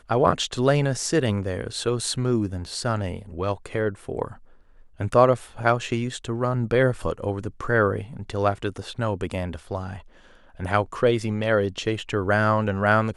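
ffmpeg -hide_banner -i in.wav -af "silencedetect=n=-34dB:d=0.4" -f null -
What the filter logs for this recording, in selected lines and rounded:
silence_start: 4.33
silence_end: 5.00 | silence_duration: 0.67
silence_start: 9.99
silence_end: 10.59 | silence_duration: 0.60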